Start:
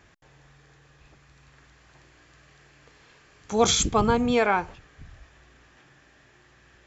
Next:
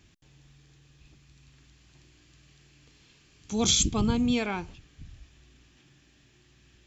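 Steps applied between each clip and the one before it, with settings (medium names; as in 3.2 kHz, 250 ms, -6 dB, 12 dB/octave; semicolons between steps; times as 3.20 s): high-order bell 930 Hz -12 dB 2.5 oct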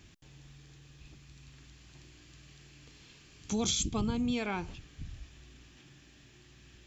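compression 4:1, threshold -33 dBFS, peak gain reduction 11.5 dB; trim +3 dB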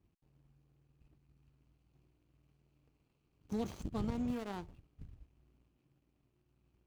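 median filter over 25 samples; power-law waveshaper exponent 1.4; trim -2.5 dB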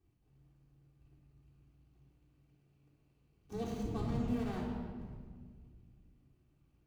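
reverberation RT60 1.8 s, pre-delay 3 ms, DRR -4 dB; trim -4.5 dB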